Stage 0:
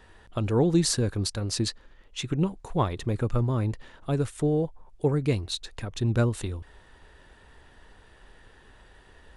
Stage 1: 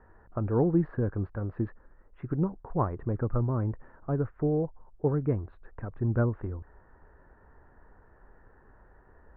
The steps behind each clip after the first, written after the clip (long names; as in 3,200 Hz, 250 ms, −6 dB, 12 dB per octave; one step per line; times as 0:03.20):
Butterworth low-pass 1,600 Hz 36 dB per octave
level −2.5 dB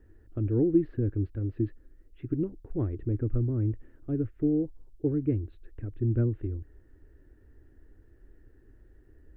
drawn EQ curve 110 Hz 0 dB, 180 Hz −11 dB, 310 Hz +4 dB, 490 Hz −10 dB, 1,000 Hz −26 dB, 3,000 Hz +4 dB
level +2.5 dB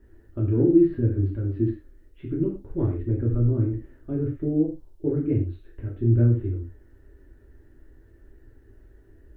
reverb whose tail is shaped and stops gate 150 ms falling, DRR −4 dB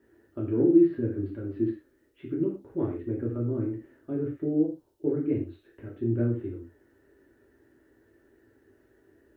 Bessel high-pass filter 250 Hz, order 2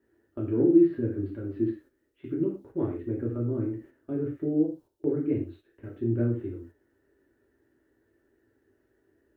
noise gate −48 dBFS, range −7 dB